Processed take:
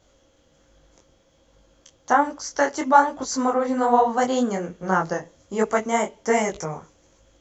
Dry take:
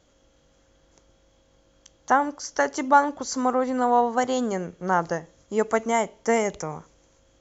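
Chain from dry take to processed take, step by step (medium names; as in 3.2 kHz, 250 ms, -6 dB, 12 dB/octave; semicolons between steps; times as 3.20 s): detune thickener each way 43 cents; trim +5.5 dB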